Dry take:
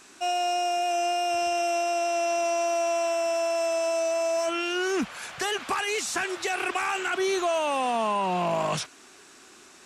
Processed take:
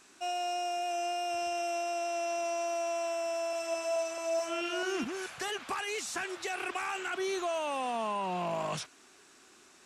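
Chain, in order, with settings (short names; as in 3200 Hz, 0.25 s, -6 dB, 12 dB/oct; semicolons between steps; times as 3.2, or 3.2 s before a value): 3.31–5.5 reverse delay 0.217 s, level -4.5 dB; gain -7.5 dB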